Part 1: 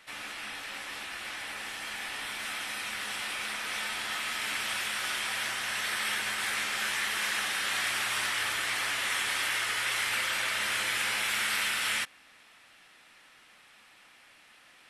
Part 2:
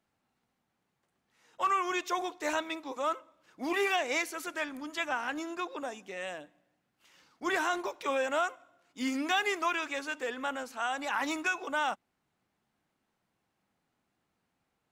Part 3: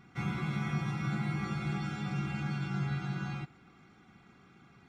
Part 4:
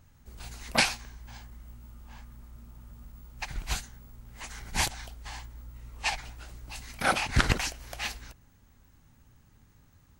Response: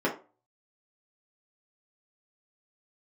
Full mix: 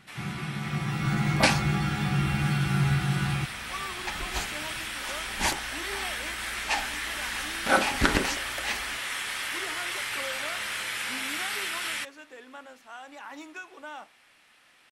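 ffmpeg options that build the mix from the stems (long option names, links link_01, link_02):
-filter_complex "[0:a]volume=-2.5dB[link_01];[1:a]adelay=2100,volume=-12dB,asplit=2[link_02][link_03];[link_03]volume=-22.5dB[link_04];[2:a]dynaudnorm=framelen=610:gausssize=3:maxgain=10dB,lowpass=6800,asubboost=boost=5.5:cutoff=87,volume=-1dB[link_05];[3:a]adelay=650,volume=-1.5dB,asplit=2[link_06][link_07];[link_07]volume=-12dB[link_08];[4:a]atrim=start_sample=2205[link_09];[link_04][link_08]amix=inputs=2:normalize=0[link_10];[link_10][link_09]afir=irnorm=-1:irlink=0[link_11];[link_01][link_02][link_05][link_06][link_11]amix=inputs=5:normalize=0"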